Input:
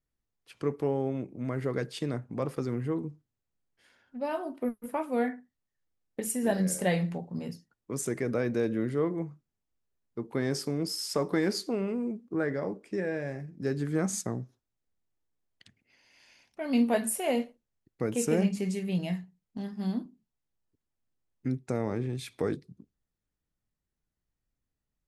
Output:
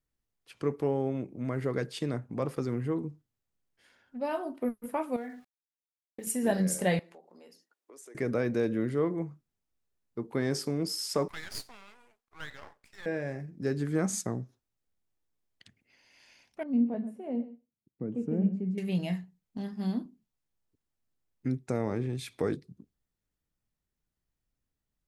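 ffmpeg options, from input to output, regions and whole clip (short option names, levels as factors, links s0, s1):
-filter_complex "[0:a]asettb=1/sr,asplit=3[s0][s1][s2];[s0]atrim=end=5.164[s3];[s1]atrim=start=5.16:end=6.27,asetpts=PTS-STARTPTS,afade=t=in:d=0.004:c=qsin,afade=t=out:st=1.106:d=0.004:c=qsin,acompressor=threshold=0.0112:ratio=3:attack=3.2:release=140:knee=1:detection=peak,aeval=exprs='val(0)*gte(abs(val(0)),0.00119)':c=same[s4];[s2]atrim=start=6.266[s5];[s3][s4]acrossfade=d=0.004:c1=hsin:c2=qsin[s6];[s6][s5]acrossfade=d=0.004:c1=qsin:c2=hsin,asettb=1/sr,asplit=3[s7][s8][s9];[s7]atrim=end=6.994[s10];[s8]atrim=start=6.99:end=8.15,asetpts=PTS-STARTPTS,afade=t=in:d=0.004:c=qsin,afade=t=out:st=1.156:d=0.004:c=qsin,highpass=f=340:w=0.5412,highpass=f=340:w=1.3066,acompressor=threshold=0.00158:ratio=2.5:attack=3.2:release=140:knee=1:detection=peak[s11];[s9]atrim=start=8.146[s12];[s10][s11]acrossfade=d=0.004:c1=hsin:c2=qsin[s13];[s13][s12]acrossfade=d=0.004:c1=qsin:c2=hsin,asettb=1/sr,asplit=3[s14][s15][s16];[s14]atrim=end=11.284[s17];[s15]atrim=start=11.28:end=13.06,asetpts=PTS-STARTPTS,afade=t=in:d=0.004:c=qsin,afade=t=out:st=1.776:d=0.004:c=qsin,highpass=f=860:w=0.5412,highpass=f=860:w=1.3066,aeval=exprs='max(val(0),0)':c=same[s18];[s16]atrim=start=13.056[s19];[s17][s18]acrossfade=d=0.004:c1=hsin:c2=qsin[s20];[s20][s19]acrossfade=d=0.004:c1=qsin:c2=hsin,asettb=1/sr,asplit=3[s21][s22][s23];[s21]atrim=end=16.634[s24];[s22]atrim=start=16.63:end=18.78,asetpts=PTS-STARTPTS,afade=t=in:d=0.004:c=qsin,afade=t=out:st=2.146:d=0.004:c=qsin,bandpass=f=200:t=q:w=1.4,aecho=1:1:130:0.158,atrim=end_sample=94815[s25];[s23]atrim=start=18.776[s26];[s24][s25]acrossfade=d=0.004:c1=hsin:c2=qsin[s27];[s27][s26]acrossfade=d=0.004:c1=qsin:c2=hsin"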